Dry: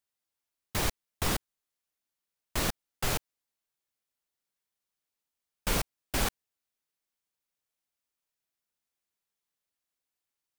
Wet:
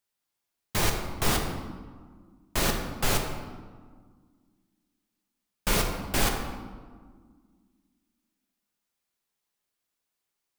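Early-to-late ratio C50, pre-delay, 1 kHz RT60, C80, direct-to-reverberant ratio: 4.5 dB, 4 ms, 1.6 s, 6.5 dB, 2.0 dB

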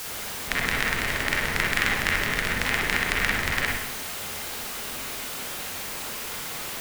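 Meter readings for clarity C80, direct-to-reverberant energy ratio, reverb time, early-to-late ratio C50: 4.5 dB, -4.0 dB, 0.75 s, -0.5 dB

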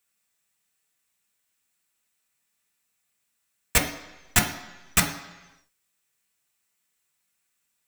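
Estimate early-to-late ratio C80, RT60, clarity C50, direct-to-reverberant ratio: 11.5 dB, 1.1 s, 9.5 dB, 0.5 dB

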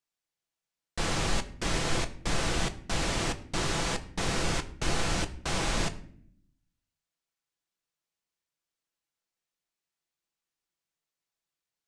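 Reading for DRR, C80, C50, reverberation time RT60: 7.0 dB, 18.0 dB, 16.0 dB, 0.60 s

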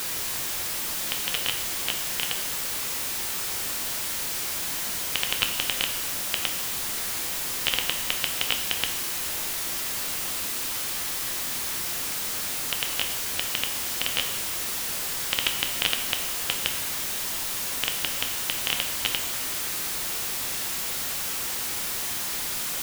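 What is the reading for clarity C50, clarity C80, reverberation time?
8.5 dB, 10.5 dB, 0.95 s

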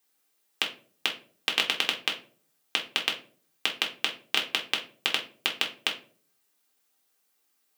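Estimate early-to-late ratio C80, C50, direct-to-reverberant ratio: 16.5 dB, 11.0 dB, -1.0 dB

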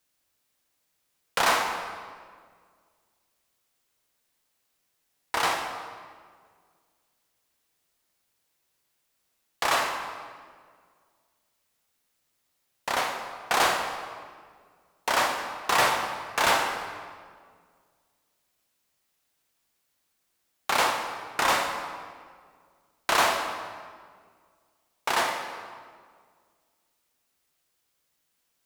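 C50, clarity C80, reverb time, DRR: 5.0 dB, 6.5 dB, 1.8 s, 3.0 dB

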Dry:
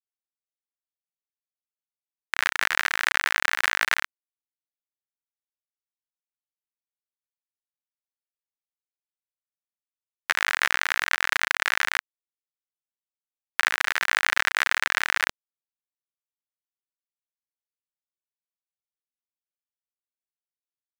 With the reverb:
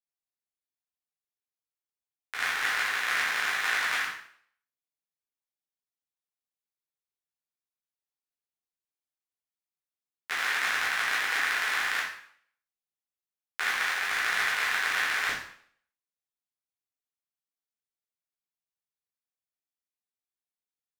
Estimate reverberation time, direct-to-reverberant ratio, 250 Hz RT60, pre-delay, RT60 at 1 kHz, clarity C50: 0.60 s, -7.5 dB, 0.60 s, 6 ms, 0.60 s, 3.5 dB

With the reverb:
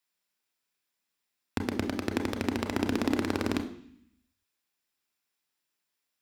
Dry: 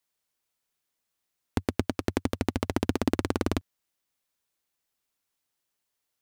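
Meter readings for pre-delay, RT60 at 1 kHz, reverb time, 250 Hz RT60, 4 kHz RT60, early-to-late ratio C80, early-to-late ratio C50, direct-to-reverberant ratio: 29 ms, 0.65 s, 0.65 s, 0.95 s, 0.85 s, 14.5 dB, 11.0 dB, 6.5 dB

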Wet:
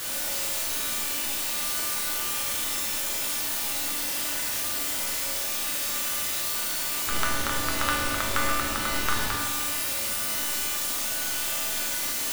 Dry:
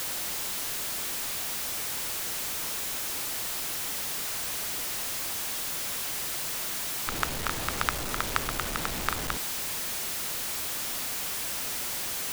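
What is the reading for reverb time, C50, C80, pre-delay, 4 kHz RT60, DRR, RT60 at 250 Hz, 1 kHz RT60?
1.6 s, 0.0 dB, 2.0 dB, 3 ms, 1.6 s, -5.5 dB, 1.6 s, 1.6 s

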